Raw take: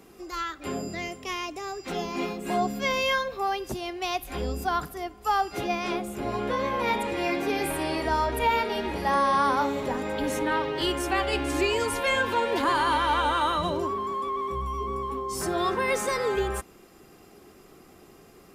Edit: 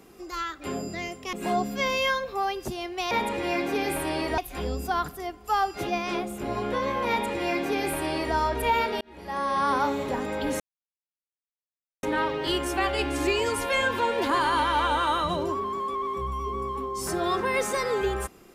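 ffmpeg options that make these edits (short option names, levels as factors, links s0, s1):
-filter_complex "[0:a]asplit=6[s0][s1][s2][s3][s4][s5];[s0]atrim=end=1.332[s6];[s1]atrim=start=2.368:end=4.152[s7];[s2]atrim=start=6.848:end=8.122[s8];[s3]atrim=start=4.148:end=8.78,asetpts=PTS-STARTPTS,afade=t=out:st=4.628:d=0.004:c=hsin[s9];[s4]atrim=start=8.78:end=10.37,asetpts=PTS-STARTPTS,afade=t=in:d=0.77,afade=t=out:st=1.586:d=0.004:c=hsin,apad=pad_dur=1.43[s10];[s5]atrim=start=10.37,asetpts=PTS-STARTPTS,afade=t=in:d=0.004:c=hsin[s11];[s6][s7]acrossfade=d=0.004:c1=hsin:c2=hsin[s12];[s12][s8]acrossfade=d=0.004:c1=hsin:c2=hsin[s13];[s9][s10][s11]concat=n=3:v=0:a=1[s14];[s13][s14]acrossfade=d=0.004:c1=hsin:c2=hsin"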